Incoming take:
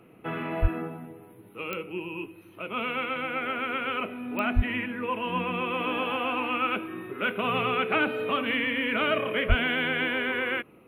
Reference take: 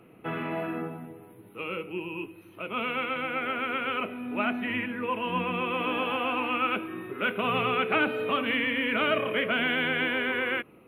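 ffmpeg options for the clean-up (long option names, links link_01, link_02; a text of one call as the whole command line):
ffmpeg -i in.wav -filter_complex "[0:a]adeclick=threshold=4,asplit=3[link_01][link_02][link_03];[link_01]afade=type=out:start_time=0.61:duration=0.02[link_04];[link_02]highpass=frequency=140:width=0.5412,highpass=frequency=140:width=1.3066,afade=type=in:start_time=0.61:duration=0.02,afade=type=out:start_time=0.73:duration=0.02[link_05];[link_03]afade=type=in:start_time=0.73:duration=0.02[link_06];[link_04][link_05][link_06]amix=inputs=3:normalize=0,asplit=3[link_07][link_08][link_09];[link_07]afade=type=out:start_time=4.55:duration=0.02[link_10];[link_08]highpass=frequency=140:width=0.5412,highpass=frequency=140:width=1.3066,afade=type=in:start_time=4.55:duration=0.02,afade=type=out:start_time=4.67:duration=0.02[link_11];[link_09]afade=type=in:start_time=4.67:duration=0.02[link_12];[link_10][link_11][link_12]amix=inputs=3:normalize=0,asplit=3[link_13][link_14][link_15];[link_13]afade=type=out:start_time=9.48:duration=0.02[link_16];[link_14]highpass=frequency=140:width=0.5412,highpass=frequency=140:width=1.3066,afade=type=in:start_time=9.48:duration=0.02,afade=type=out:start_time=9.6:duration=0.02[link_17];[link_15]afade=type=in:start_time=9.6:duration=0.02[link_18];[link_16][link_17][link_18]amix=inputs=3:normalize=0" out.wav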